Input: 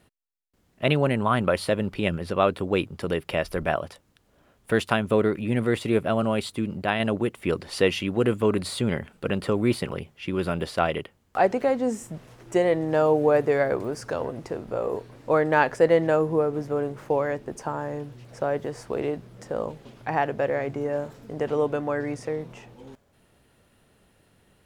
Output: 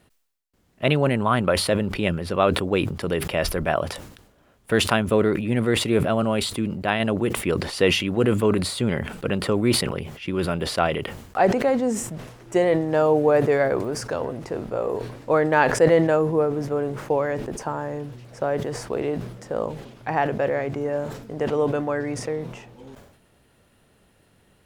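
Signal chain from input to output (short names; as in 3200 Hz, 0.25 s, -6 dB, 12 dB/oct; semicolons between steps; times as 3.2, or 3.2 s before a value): sustainer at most 66 dB/s; gain +1.5 dB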